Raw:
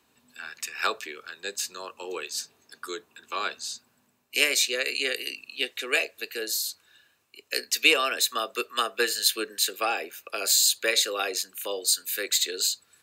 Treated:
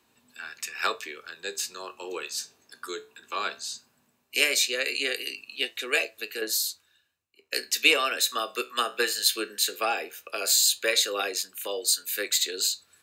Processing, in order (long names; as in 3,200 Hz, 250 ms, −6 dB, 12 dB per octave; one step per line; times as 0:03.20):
flanger 0.17 Hz, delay 8.4 ms, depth 8 ms, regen +72%
0:06.41–0:07.53: multiband upward and downward expander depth 70%
level +4 dB